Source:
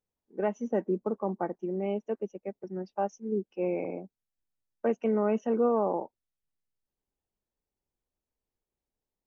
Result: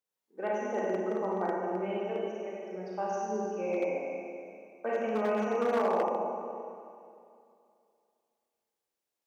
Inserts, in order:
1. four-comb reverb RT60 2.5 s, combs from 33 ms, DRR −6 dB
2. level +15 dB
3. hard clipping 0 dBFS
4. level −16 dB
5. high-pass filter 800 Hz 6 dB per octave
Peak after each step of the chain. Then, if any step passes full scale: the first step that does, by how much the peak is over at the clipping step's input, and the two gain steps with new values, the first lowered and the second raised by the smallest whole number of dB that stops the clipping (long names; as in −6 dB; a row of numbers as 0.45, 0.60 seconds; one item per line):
−7.5, +7.5, 0.0, −16.0, −16.5 dBFS
step 2, 7.5 dB
step 2 +7 dB, step 4 −8 dB